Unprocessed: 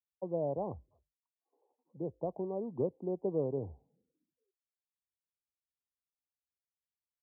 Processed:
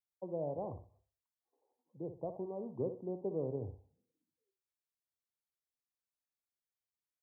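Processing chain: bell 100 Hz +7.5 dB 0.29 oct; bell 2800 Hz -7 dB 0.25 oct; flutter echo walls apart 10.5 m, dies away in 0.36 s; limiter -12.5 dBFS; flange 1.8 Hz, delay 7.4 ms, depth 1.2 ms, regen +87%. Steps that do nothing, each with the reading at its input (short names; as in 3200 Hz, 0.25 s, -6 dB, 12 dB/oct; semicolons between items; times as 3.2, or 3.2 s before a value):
bell 2800 Hz: input band ends at 960 Hz; limiter -12.5 dBFS: input peak -21.0 dBFS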